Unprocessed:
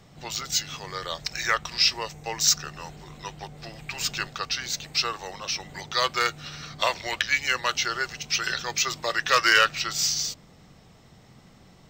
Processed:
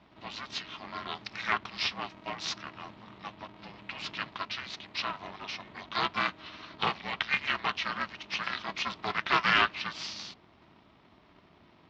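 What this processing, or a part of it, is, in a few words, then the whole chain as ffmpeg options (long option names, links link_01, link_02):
ring modulator pedal into a guitar cabinet: -af "aeval=exprs='val(0)*sgn(sin(2*PI*160*n/s))':channel_layout=same,highpass=85,equalizer=frequency=190:width_type=q:width=4:gain=5,equalizer=frequency=310:width_type=q:width=4:gain=-6,equalizer=frequency=510:width_type=q:width=4:gain=-7,equalizer=frequency=1100:width_type=q:width=4:gain=3,equalizer=frequency=1600:width_type=q:width=4:gain=-3,lowpass=frequency=3800:width=0.5412,lowpass=frequency=3800:width=1.3066,volume=-4.5dB"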